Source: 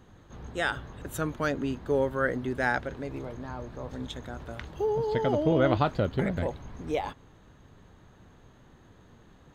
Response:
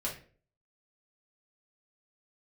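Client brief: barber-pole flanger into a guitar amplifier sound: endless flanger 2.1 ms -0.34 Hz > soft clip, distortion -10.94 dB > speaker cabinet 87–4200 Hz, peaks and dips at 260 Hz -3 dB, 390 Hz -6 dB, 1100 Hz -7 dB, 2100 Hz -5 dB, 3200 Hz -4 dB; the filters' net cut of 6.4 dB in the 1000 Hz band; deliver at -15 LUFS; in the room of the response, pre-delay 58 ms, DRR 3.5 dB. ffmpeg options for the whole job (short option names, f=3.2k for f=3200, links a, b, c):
-filter_complex "[0:a]equalizer=f=1k:t=o:g=-6.5,asplit=2[a][b];[1:a]atrim=start_sample=2205,adelay=58[c];[b][c]afir=irnorm=-1:irlink=0,volume=-6.5dB[d];[a][d]amix=inputs=2:normalize=0,asplit=2[e][f];[f]adelay=2.1,afreqshift=-0.34[g];[e][g]amix=inputs=2:normalize=1,asoftclip=threshold=-27.5dB,highpass=87,equalizer=f=260:t=q:w=4:g=-3,equalizer=f=390:t=q:w=4:g=-6,equalizer=f=1.1k:t=q:w=4:g=-7,equalizer=f=2.1k:t=q:w=4:g=-5,equalizer=f=3.2k:t=q:w=4:g=-4,lowpass=f=4.2k:w=0.5412,lowpass=f=4.2k:w=1.3066,volume=22.5dB"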